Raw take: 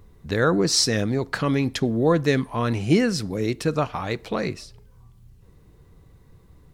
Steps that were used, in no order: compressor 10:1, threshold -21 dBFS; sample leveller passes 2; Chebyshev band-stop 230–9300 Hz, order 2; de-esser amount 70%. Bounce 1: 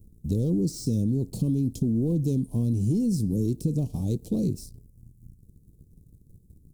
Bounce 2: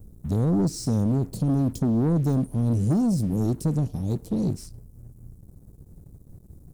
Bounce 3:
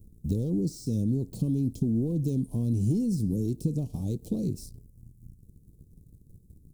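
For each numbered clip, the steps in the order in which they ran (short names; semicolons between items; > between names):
sample leveller > Chebyshev band-stop > compressor > de-esser; de-esser > Chebyshev band-stop > compressor > sample leveller; sample leveller > compressor > de-esser > Chebyshev band-stop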